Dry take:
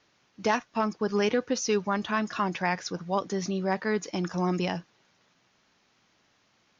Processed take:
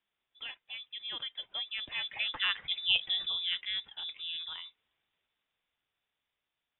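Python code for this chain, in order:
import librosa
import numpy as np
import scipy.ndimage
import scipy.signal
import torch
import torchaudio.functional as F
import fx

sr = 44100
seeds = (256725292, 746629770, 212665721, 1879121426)

y = fx.doppler_pass(x, sr, speed_mps=29, closest_m=9.9, pass_at_s=2.82)
y = fx.freq_invert(y, sr, carrier_hz=3700)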